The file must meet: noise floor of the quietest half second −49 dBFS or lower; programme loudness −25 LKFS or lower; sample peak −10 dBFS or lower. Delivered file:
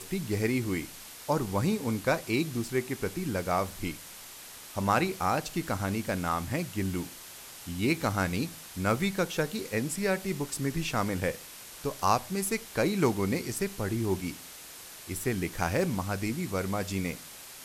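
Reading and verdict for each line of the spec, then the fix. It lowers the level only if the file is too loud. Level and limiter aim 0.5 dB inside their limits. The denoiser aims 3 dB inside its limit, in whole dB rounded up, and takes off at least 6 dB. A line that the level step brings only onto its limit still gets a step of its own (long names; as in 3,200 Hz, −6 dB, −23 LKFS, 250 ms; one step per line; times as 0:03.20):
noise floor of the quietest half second −47 dBFS: out of spec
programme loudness −30.5 LKFS: in spec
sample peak −10.5 dBFS: in spec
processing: broadband denoise 6 dB, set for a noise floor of −47 dBFS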